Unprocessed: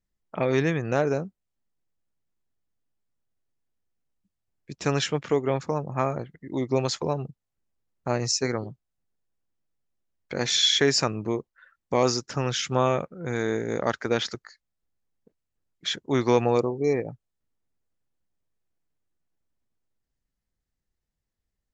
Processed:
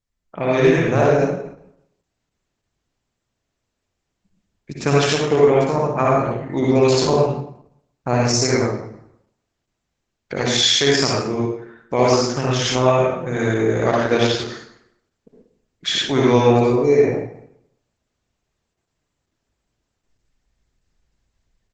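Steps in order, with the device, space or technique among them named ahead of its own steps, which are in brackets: speakerphone in a meeting room (reverberation RT60 0.70 s, pre-delay 54 ms, DRR -5 dB; speakerphone echo 100 ms, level -28 dB; level rider gain up to 10.5 dB; trim -1 dB; Opus 12 kbps 48 kHz)

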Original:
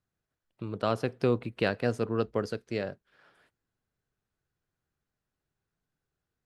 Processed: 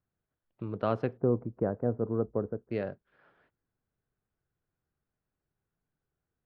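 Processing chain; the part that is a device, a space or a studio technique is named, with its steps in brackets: phone in a pocket (low-pass 3.1 kHz 12 dB/octave; treble shelf 2.2 kHz -9 dB); 1.17–2.71 s: Bessel low-pass 820 Hz, order 6

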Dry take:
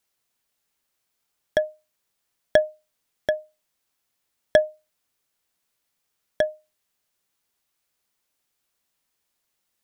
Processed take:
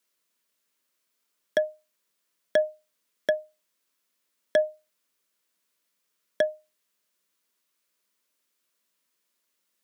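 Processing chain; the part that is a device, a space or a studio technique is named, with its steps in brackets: PA system with an anti-feedback notch (high-pass 170 Hz 24 dB/octave; Butterworth band-stop 780 Hz, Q 4.2; peak limiter -11 dBFS, peak gain reduction 6.5 dB)

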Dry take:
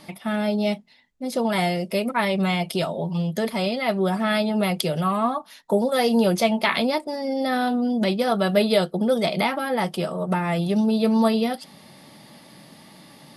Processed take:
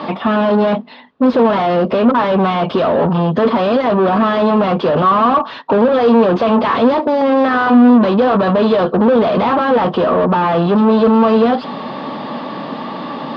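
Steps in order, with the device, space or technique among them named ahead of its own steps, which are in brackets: 7.21–7.90 s: high-order bell 1.5 kHz +11 dB; overdrive pedal into a guitar cabinet (overdrive pedal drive 37 dB, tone 1.1 kHz, clips at -5.5 dBFS; cabinet simulation 83–3800 Hz, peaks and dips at 250 Hz +8 dB, 460 Hz +5 dB, 1.1 kHz +8 dB, 2.1 kHz -9 dB); trim -1.5 dB

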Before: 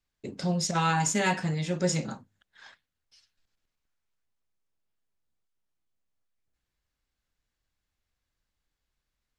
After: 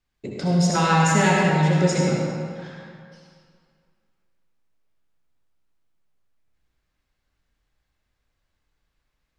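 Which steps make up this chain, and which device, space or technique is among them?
swimming-pool hall (reverberation RT60 2.2 s, pre-delay 59 ms, DRR -2.5 dB; treble shelf 4.3 kHz -7 dB); trim +5 dB

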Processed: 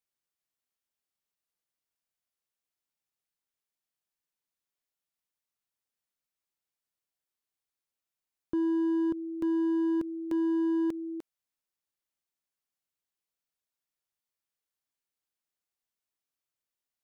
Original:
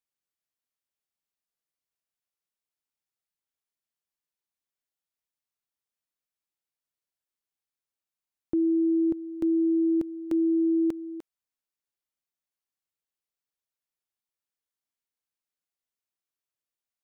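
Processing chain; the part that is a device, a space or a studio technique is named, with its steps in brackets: clipper into limiter (hard clipper -22 dBFS, distortion -21 dB; peak limiter -25 dBFS, peak gain reduction 3 dB)

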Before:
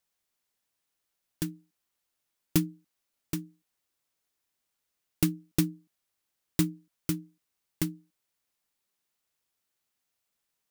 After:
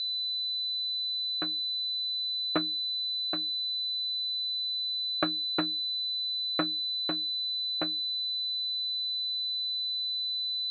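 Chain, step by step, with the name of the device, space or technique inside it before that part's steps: toy sound module (decimation joined by straight lines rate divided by 4×; class-D stage that switches slowly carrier 4 kHz; cabinet simulation 540–5000 Hz, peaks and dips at 630 Hz +8 dB, 910 Hz -7 dB, 1.4 kHz +5 dB, 2 kHz -6 dB, 3.2 kHz -7 dB, 5 kHz -9 dB); trim +5.5 dB

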